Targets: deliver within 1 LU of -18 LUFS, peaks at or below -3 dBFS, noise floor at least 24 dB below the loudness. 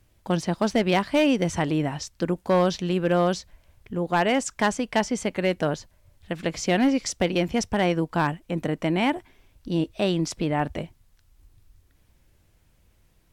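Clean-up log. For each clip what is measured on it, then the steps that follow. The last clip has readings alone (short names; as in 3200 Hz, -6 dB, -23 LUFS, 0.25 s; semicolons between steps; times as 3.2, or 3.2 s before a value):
clipped 0.4%; flat tops at -13.5 dBFS; loudness -25.0 LUFS; peak -13.5 dBFS; loudness target -18.0 LUFS
-> clip repair -13.5 dBFS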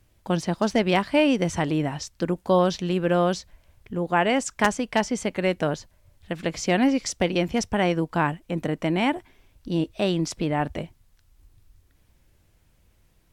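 clipped 0.0%; loudness -24.5 LUFS; peak -4.5 dBFS; loudness target -18.0 LUFS
-> gain +6.5 dB; limiter -3 dBFS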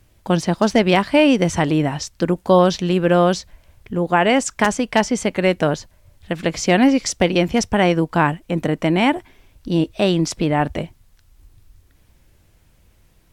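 loudness -18.5 LUFS; peak -3.0 dBFS; noise floor -56 dBFS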